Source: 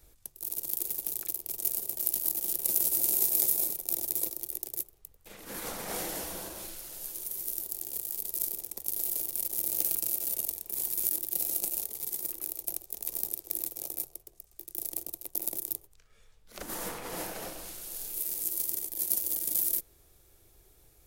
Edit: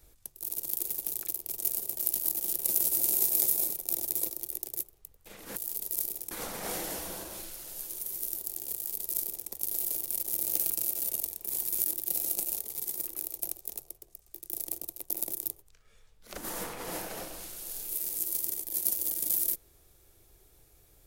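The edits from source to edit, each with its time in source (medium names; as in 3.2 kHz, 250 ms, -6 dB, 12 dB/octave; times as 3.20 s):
7.99–8.74 s: copy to 5.56 s
13.03–14.03 s: delete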